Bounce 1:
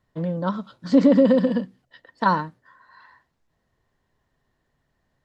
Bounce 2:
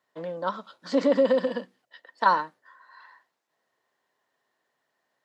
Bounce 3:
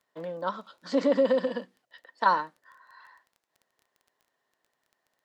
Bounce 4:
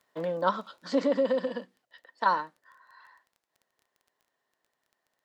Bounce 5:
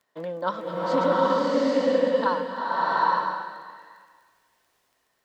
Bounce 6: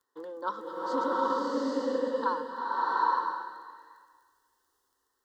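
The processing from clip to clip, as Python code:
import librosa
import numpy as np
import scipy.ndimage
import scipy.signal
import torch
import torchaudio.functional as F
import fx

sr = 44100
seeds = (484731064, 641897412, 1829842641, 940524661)

y1 = scipy.signal.sosfilt(scipy.signal.butter(2, 480.0, 'highpass', fs=sr, output='sos'), x)
y2 = fx.dmg_crackle(y1, sr, seeds[0], per_s=14.0, level_db=-44.0)
y2 = y2 * 10.0 ** (-2.0 / 20.0)
y3 = fx.rider(y2, sr, range_db=5, speed_s=0.5)
y4 = fx.rev_bloom(y3, sr, seeds[1], attack_ms=810, drr_db=-8.0)
y4 = y4 * 10.0 ** (-1.5 / 20.0)
y5 = fx.fixed_phaser(y4, sr, hz=640.0, stages=6)
y5 = y5 * 10.0 ** (-3.5 / 20.0)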